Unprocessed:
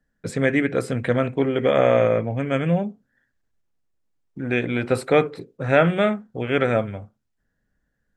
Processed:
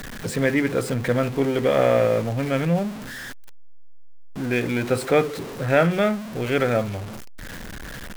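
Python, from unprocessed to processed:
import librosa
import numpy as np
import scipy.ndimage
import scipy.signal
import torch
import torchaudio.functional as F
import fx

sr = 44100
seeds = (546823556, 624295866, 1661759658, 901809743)

y = x + 0.5 * 10.0 ** (-27.0 / 20.0) * np.sign(x)
y = F.gain(torch.from_numpy(y), -2.0).numpy()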